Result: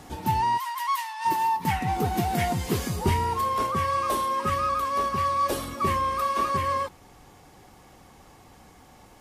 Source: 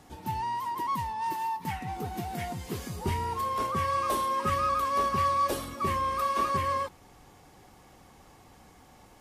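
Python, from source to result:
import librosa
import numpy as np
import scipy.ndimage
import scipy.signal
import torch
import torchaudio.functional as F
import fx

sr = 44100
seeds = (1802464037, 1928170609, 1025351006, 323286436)

y = fx.highpass(x, sr, hz=1200.0, slope=24, at=(0.57, 1.24), fade=0.02)
y = fx.rider(y, sr, range_db=5, speed_s=0.5)
y = y * 10.0 ** (4.5 / 20.0)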